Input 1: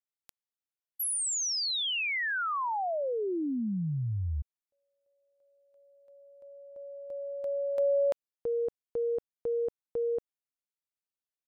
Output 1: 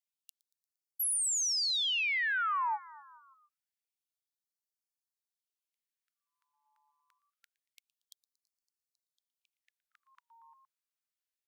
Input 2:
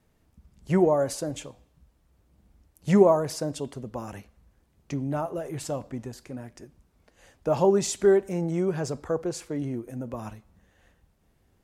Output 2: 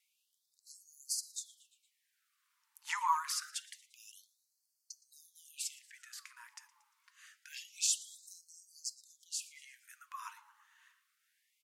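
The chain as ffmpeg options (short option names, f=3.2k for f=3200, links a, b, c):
-filter_complex "[0:a]asplit=5[a][b][c][d][e];[b]adelay=116,afreqshift=150,volume=-21dB[f];[c]adelay=232,afreqshift=300,volume=-26dB[g];[d]adelay=348,afreqshift=450,volume=-31.1dB[h];[e]adelay=464,afreqshift=600,volume=-36.1dB[i];[a][f][g][h][i]amix=inputs=5:normalize=0,afftfilt=real='re*gte(b*sr/1024,830*pow(4300/830,0.5+0.5*sin(2*PI*0.26*pts/sr)))':imag='im*gte(b*sr/1024,830*pow(4300/830,0.5+0.5*sin(2*PI*0.26*pts/sr)))':win_size=1024:overlap=0.75"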